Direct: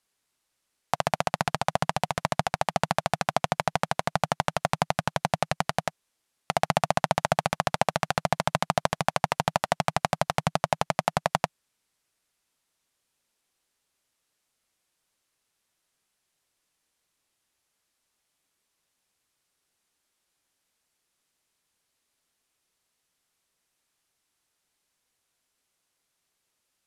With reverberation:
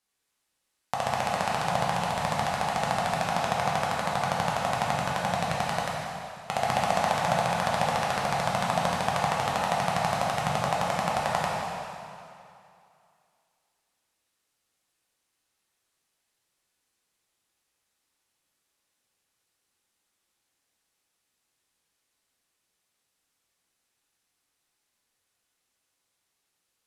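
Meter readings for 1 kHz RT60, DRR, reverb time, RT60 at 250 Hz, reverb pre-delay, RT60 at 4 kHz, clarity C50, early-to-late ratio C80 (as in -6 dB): 2.6 s, -4.5 dB, 2.6 s, 2.3 s, 6 ms, 2.3 s, -1.5 dB, 0.5 dB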